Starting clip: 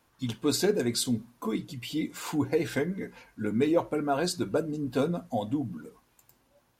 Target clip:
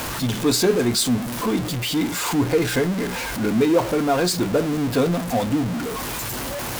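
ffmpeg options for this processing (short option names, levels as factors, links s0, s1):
-af "aeval=exprs='val(0)+0.5*0.0422*sgn(val(0))':c=same,volume=1.78"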